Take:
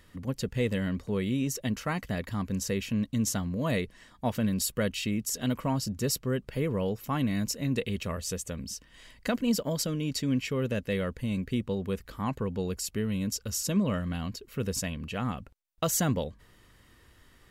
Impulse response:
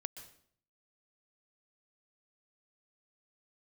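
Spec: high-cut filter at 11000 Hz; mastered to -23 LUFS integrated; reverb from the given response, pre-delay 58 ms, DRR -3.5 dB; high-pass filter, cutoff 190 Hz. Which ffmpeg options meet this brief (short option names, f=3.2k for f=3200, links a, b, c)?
-filter_complex "[0:a]highpass=190,lowpass=11k,asplit=2[a][b];[1:a]atrim=start_sample=2205,adelay=58[c];[b][c]afir=irnorm=-1:irlink=0,volume=6dB[d];[a][d]amix=inputs=2:normalize=0,volume=4.5dB"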